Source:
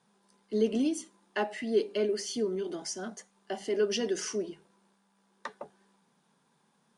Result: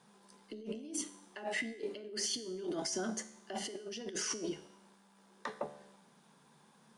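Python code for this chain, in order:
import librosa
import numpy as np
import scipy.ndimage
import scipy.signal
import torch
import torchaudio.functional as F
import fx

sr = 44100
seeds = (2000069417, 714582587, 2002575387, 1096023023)

y = fx.over_compress(x, sr, threshold_db=-40.0, ratio=-1.0)
y = fx.comb_fb(y, sr, f0_hz=73.0, decay_s=0.8, harmonics='all', damping=0.0, mix_pct=60)
y = F.gain(torch.from_numpy(y), 5.0).numpy()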